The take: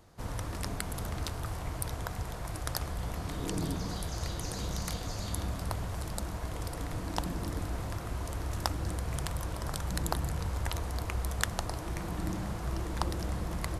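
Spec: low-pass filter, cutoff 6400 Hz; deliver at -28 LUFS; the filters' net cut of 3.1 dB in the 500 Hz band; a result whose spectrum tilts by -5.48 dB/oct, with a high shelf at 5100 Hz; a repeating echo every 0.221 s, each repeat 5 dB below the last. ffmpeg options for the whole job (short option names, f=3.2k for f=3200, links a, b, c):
-af "lowpass=6.4k,equalizer=f=500:t=o:g=-4,highshelf=f=5.1k:g=-8,aecho=1:1:221|442|663|884|1105|1326|1547:0.562|0.315|0.176|0.0988|0.0553|0.031|0.0173,volume=8dB"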